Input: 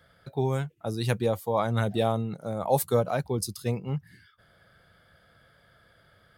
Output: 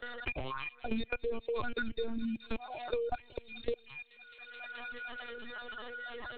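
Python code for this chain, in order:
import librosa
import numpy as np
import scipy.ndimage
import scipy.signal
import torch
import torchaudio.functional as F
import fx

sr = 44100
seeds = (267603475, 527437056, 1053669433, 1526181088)

y = fx.rattle_buzz(x, sr, strikes_db=-36.0, level_db=-30.0)
y = fx.stiff_resonator(y, sr, f0_hz=220.0, decay_s=0.54, stiffness=0.03)
y = fx.lpc_vocoder(y, sr, seeds[0], excitation='pitch_kept', order=10)
y = fx.level_steps(y, sr, step_db=21)
y = fx.high_shelf(y, sr, hz=3100.0, db=9.0)
y = fx.dereverb_blind(y, sr, rt60_s=1.5)
y = fx.peak_eq(y, sr, hz=180.0, db=-10.0, octaves=0.59)
y = fx.echo_wet_highpass(y, sr, ms=214, feedback_pct=71, hz=2600.0, wet_db=-14)
y = fx.band_squash(y, sr, depth_pct=100)
y = y * librosa.db_to_amplitude(13.0)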